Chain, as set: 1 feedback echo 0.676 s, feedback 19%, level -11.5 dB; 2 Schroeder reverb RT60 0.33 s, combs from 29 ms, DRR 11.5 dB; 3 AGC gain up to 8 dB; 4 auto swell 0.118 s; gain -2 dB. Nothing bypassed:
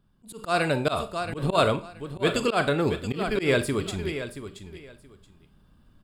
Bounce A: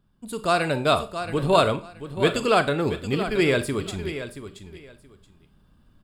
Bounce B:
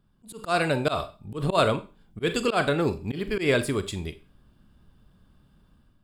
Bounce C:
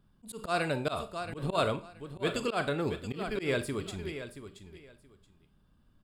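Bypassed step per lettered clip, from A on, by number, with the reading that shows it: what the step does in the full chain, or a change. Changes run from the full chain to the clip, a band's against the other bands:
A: 4, 1 kHz band +2.0 dB; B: 1, momentary loudness spread change -5 LU; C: 3, momentary loudness spread change -1 LU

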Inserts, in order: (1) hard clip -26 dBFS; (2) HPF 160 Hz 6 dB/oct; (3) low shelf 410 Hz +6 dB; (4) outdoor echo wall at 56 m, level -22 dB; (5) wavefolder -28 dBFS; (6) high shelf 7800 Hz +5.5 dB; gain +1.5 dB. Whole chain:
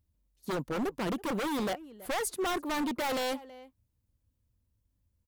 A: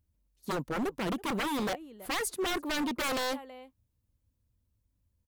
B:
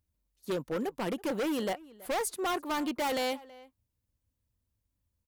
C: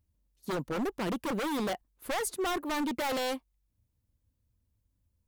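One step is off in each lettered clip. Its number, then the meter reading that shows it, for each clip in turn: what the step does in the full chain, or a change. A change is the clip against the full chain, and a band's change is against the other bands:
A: 1, distortion -11 dB; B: 3, 125 Hz band -2.5 dB; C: 4, momentary loudness spread change -3 LU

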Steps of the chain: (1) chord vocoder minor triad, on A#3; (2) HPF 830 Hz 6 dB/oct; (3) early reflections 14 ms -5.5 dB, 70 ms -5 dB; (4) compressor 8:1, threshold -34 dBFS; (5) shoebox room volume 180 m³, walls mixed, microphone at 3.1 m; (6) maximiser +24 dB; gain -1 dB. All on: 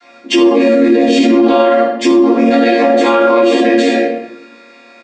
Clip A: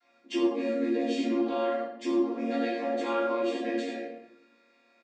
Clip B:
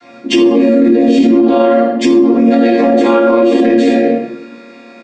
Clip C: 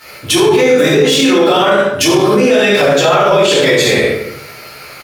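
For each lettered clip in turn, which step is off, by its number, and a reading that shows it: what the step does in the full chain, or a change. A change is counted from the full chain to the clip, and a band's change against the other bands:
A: 6, crest factor change +6.0 dB; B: 2, 250 Hz band +5.0 dB; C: 1, 8 kHz band +11.5 dB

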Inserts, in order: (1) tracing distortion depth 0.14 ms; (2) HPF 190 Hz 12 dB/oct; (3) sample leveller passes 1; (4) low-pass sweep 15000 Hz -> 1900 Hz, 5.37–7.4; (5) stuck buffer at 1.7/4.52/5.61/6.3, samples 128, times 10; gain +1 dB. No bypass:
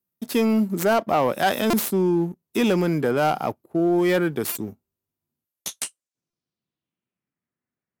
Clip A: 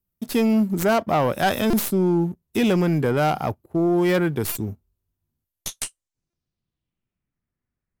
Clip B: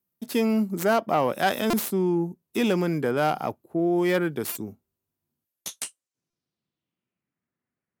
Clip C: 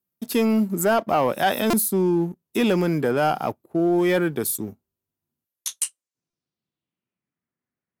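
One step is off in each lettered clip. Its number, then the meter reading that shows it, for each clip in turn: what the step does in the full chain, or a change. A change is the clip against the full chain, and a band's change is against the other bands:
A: 2, 125 Hz band +4.5 dB; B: 3, crest factor change +2.5 dB; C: 1, crest factor change +2.0 dB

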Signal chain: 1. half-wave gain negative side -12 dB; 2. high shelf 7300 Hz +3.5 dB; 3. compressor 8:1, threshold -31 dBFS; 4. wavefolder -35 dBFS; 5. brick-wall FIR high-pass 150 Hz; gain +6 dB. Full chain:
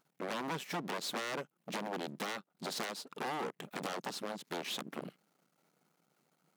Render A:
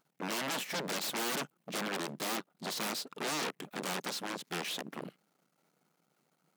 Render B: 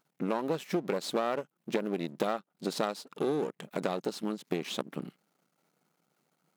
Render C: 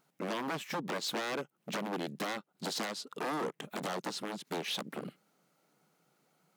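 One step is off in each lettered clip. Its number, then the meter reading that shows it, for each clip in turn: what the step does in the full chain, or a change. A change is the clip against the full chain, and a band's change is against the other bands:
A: 3, crest factor change -2.5 dB; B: 4, crest factor change +3.5 dB; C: 1, distortion -5 dB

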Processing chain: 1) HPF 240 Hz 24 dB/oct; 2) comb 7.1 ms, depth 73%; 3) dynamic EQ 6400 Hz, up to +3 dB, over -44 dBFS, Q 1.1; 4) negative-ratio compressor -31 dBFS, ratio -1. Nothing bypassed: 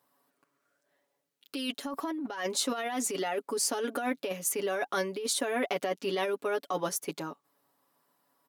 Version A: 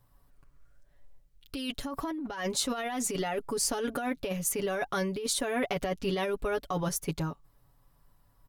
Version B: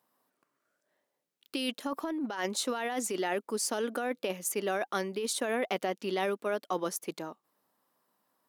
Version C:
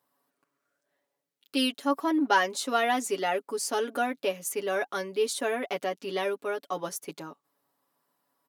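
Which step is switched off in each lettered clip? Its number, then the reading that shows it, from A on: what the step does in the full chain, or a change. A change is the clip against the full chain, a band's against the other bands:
1, 125 Hz band +11.0 dB; 2, 8 kHz band -2.5 dB; 4, crest factor change +2.5 dB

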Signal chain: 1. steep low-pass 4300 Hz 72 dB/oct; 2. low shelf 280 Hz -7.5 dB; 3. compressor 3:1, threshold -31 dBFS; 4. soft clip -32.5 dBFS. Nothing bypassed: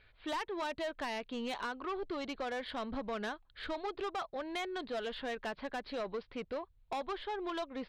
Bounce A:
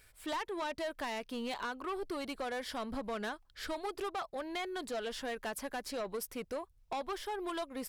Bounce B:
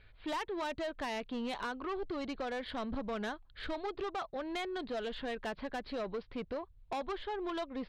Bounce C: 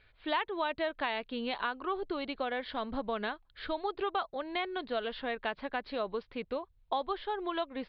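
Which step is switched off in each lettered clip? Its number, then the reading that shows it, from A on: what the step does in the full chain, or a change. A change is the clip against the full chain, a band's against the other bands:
1, 8 kHz band +9.0 dB; 2, 125 Hz band +4.5 dB; 4, distortion -10 dB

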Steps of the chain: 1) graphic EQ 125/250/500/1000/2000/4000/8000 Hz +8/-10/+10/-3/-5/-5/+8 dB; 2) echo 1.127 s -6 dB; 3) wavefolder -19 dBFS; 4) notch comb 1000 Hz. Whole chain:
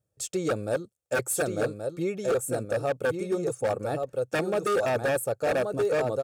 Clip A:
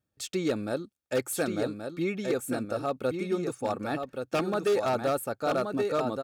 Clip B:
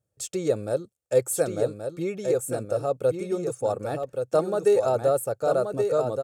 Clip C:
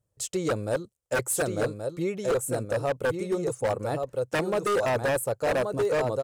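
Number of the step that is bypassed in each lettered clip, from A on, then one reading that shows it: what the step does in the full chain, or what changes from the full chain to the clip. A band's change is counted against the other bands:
1, crest factor change +2.0 dB; 3, distortion -4 dB; 4, crest factor change -2.0 dB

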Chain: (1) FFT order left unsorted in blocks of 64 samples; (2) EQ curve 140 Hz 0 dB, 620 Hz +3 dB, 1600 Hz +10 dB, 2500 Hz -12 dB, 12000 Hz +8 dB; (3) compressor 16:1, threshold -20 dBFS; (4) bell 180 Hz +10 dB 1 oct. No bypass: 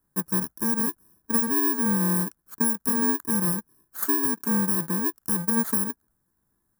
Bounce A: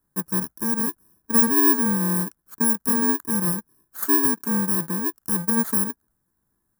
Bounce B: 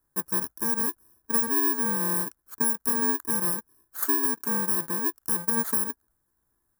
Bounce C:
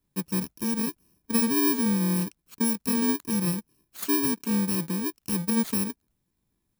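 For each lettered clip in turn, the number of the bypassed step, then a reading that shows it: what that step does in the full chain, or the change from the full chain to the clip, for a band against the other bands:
3, mean gain reduction 2.0 dB; 4, 125 Hz band -9.0 dB; 2, momentary loudness spread change +2 LU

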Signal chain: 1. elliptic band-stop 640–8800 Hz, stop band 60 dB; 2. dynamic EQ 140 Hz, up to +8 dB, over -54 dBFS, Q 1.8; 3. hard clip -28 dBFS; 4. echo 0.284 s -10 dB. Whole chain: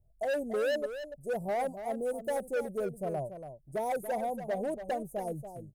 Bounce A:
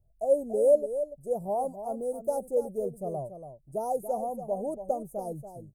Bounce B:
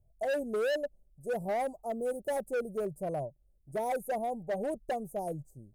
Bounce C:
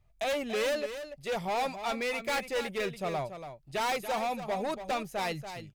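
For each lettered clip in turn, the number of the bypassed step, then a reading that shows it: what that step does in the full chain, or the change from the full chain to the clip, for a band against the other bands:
3, distortion -5 dB; 4, crest factor change -2.0 dB; 1, 4 kHz band +10.0 dB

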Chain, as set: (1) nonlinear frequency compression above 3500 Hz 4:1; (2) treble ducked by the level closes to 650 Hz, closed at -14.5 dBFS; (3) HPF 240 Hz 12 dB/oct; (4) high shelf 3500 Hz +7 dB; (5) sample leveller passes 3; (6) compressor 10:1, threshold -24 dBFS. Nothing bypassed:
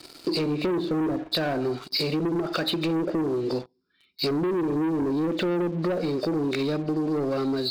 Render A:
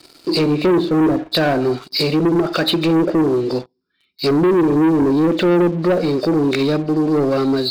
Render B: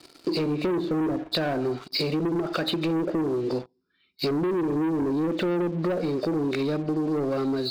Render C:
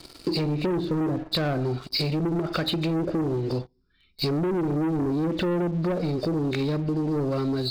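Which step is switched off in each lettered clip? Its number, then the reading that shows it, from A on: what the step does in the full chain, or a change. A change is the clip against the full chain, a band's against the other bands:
6, mean gain reduction 9.0 dB; 4, 4 kHz band -2.0 dB; 3, 125 Hz band +6.5 dB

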